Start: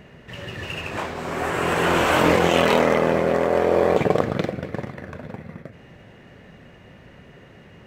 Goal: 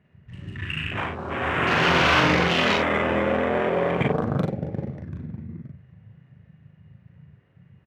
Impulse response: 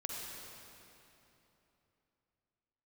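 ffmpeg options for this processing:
-filter_complex "[0:a]alimiter=limit=-10dB:level=0:latency=1:release=41,highpass=82,equalizer=frequency=490:width_type=o:width=3:gain=-12,asplit=2[link_01][link_02];[link_02]aecho=0:1:52|766:0.316|0.119[link_03];[link_01][link_03]amix=inputs=2:normalize=0,adynamicsmooth=sensitivity=7:basefreq=1700,afwtdn=0.0158,asplit=2[link_04][link_05];[link_05]adelay=39,volume=-3dB[link_06];[link_04][link_06]amix=inputs=2:normalize=0,volume=6.5dB"

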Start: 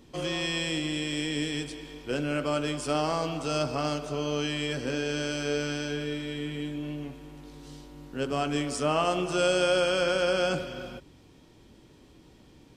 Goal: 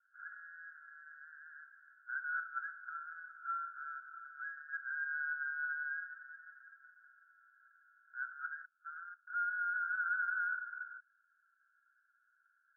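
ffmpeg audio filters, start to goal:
ffmpeg -i in.wav -filter_complex "[0:a]asettb=1/sr,asplit=3[link_01][link_02][link_03];[link_01]atrim=end=8.654[link_04];[link_02]atrim=start=8.65:end=9.27,asetpts=PTS-STARTPTS,afade=type=in:duration=0.004:curve=qsin,afade=type=out:start_time=0.616:duration=0.004:curve=qsin,agate=range=-28dB:threshold=-24dB:ratio=16:detection=peak[link_05];[link_03]atrim=start=9.266[link_06];[link_04][link_05]acrossfade=duration=0.004:curve1=hsin:curve2=qsin[link_07];[link_07][link_06]acrossfade=duration=0.004:curve1=qsin:curve2=hsin,alimiter=limit=-20dB:level=0:latency=1,asuperpass=centerf=1500:order=12:qfactor=4.7,volume=4dB" out.wav

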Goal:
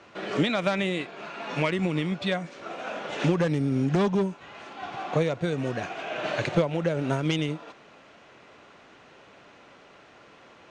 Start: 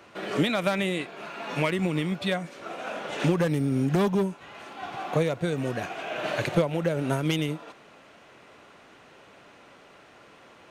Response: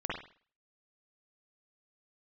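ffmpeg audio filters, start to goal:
-af "lowpass=frequency=7300:width=0.5412,lowpass=frequency=7300:width=1.3066"

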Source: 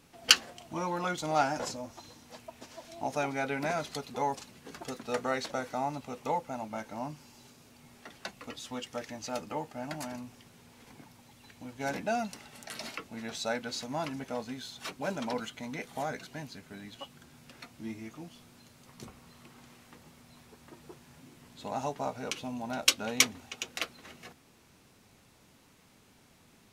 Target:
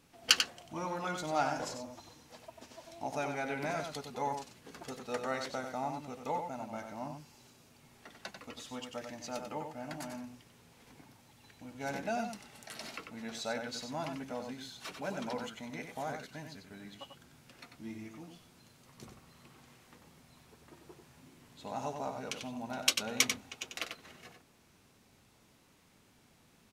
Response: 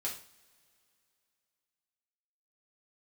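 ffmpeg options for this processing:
-filter_complex "[0:a]asplit=2[link_01][link_02];[link_02]adelay=93.29,volume=-6dB,highshelf=frequency=4000:gain=-2.1[link_03];[link_01][link_03]amix=inputs=2:normalize=0,volume=-4.5dB"

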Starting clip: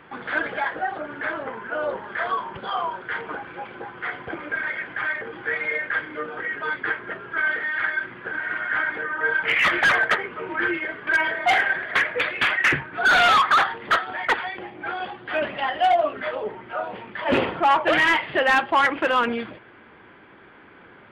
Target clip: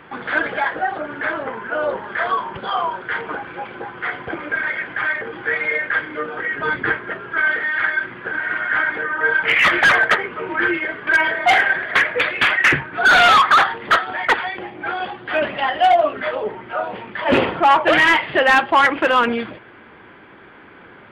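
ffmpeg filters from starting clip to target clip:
ffmpeg -i in.wav -filter_complex "[0:a]asettb=1/sr,asplit=3[link_01][link_02][link_03];[link_01]atrim=end=6.584[link_04];[link_02]atrim=start=6.58:end=6.98,asetpts=PTS-STARTPTS,afade=type=in:duration=0.004:curve=qsin,afade=type=out:start_time=0.396:duration=0.004:curve=qsin,lowshelf=frequency=280:gain=11.5[link_05];[link_03]atrim=start=6.976[link_06];[link_04][link_05]acrossfade=duration=0.004:curve1=hsin:curve2=qsin[link_07];[link_07][link_06]acrossfade=duration=0.004:curve1=qsin:curve2=hsin,volume=5dB" out.wav

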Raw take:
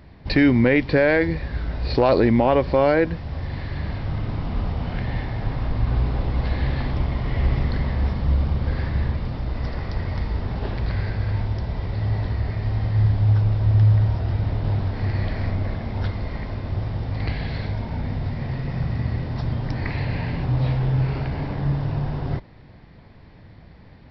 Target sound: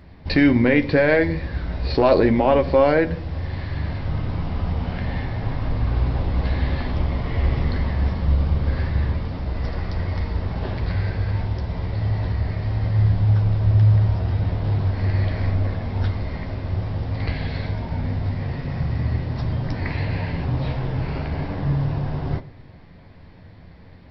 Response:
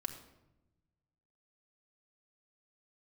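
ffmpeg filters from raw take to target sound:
-filter_complex "[0:a]asplit=2[link_01][link_02];[1:a]atrim=start_sample=2205,asetrate=88200,aresample=44100,adelay=11[link_03];[link_02][link_03]afir=irnorm=-1:irlink=0,volume=-1dB[link_04];[link_01][link_04]amix=inputs=2:normalize=0"

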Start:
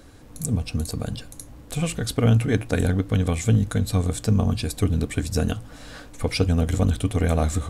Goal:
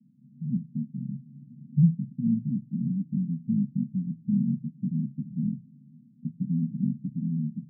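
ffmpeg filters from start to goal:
ffmpeg -i in.wav -filter_complex "[0:a]asettb=1/sr,asplit=3[link_01][link_02][link_03];[link_01]atrim=end=1.264[link_04];[link_02]atrim=start=1.26:end=1.94,asetpts=PTS-STARTPTS,afade=type=in:duration=0.004:curve=qsin,afade=type=out:start_time=0.676:duration=0.004:curve=qsin,acontrast=82[link_05];[link_03]atrim=start=1.936[link_06];[link_04][link_05]acrossfade=duration=0.004:curve1=hsin:curve2=qsin[link_07];[link_07][link_06]acrossfade=duration=0.004:curve1=qsin:curve2=hsin,asuperpass=centerf=180:order=12:qfactor=1.6" out.wav

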